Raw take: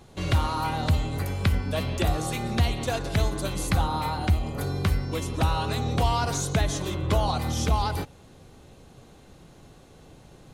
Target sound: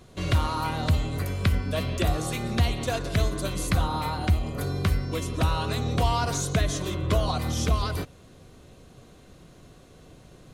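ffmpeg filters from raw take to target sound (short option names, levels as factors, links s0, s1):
-af "asuperstop=centerf=840:order=4:qfactor=7.1"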